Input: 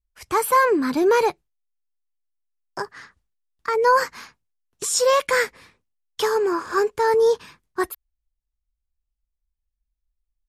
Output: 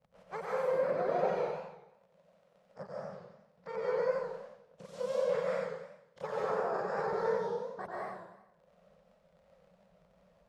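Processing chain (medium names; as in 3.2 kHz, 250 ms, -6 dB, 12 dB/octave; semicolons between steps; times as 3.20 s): spectral peaks clipped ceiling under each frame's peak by 20 dB; crackle 43 per s -48 dBFS; two resonant band-passes 310 Hz, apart 1.6 oct; compression, threshold -32 dBFS, peak gain reduction 10.5 dB; granulator, grains 20 per s, spray 19 ms, pitch spread up and down by 0 st; upward compressor, threshold -52 dBFS; algorithmic reverb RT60 0.76 s, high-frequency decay 1×, pre-delay 100 ms, DRR -4.5 dB; modulated delay 91 ms, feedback 43%, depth 156 cents, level -5 dB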